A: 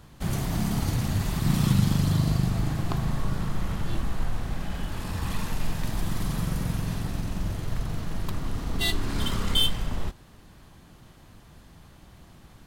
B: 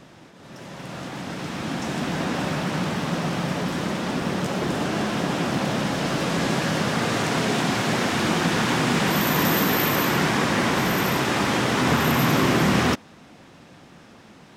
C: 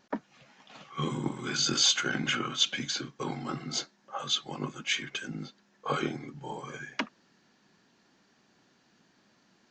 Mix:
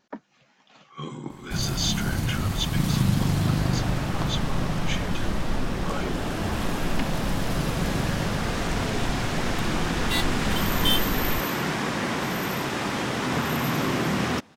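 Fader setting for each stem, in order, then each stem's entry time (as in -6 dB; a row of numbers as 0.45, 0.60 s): -0.5, -5.5, -3.5 dB; 1.30, 1.45, 0.00 s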